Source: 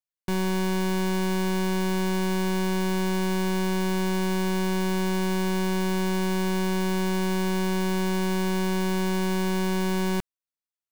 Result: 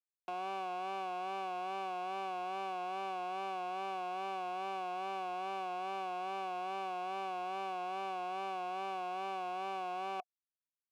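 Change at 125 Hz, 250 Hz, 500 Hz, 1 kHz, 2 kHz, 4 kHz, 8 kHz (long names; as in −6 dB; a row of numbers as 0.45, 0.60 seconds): can't be measured, −27.0 dB, −15.0 dB, −3.0 dB, −14.5 dB, −15.5 dB, below −25 dB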